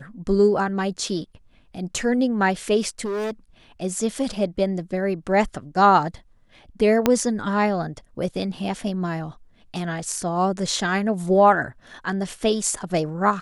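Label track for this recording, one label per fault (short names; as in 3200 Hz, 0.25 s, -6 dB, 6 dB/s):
3.040000	3.310000	clipped -24 dBFS
7.060000	7.060000	pop -3 dBFS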